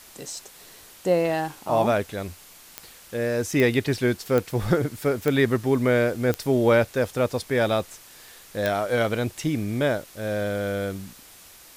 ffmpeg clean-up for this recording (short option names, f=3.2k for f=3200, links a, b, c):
-af "adeclick=t=4,afwtdn=0.0045"